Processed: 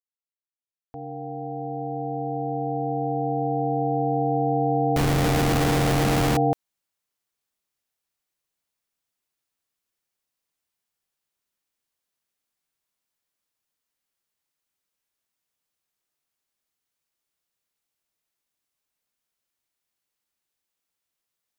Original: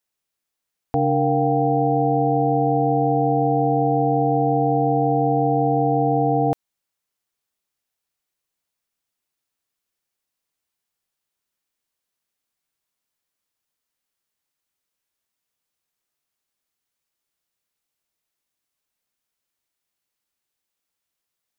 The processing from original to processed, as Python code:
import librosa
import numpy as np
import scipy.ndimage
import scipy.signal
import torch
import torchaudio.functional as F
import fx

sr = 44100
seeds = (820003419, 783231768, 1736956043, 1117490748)

y = fx.fade_in_head(x, sr, length_s=5.82)
y = fx.schmitt(y, sr, flips_db=-20.5, at=(4.96, 6.37))
y = y * librosa.db_to_amplitude(-1.5)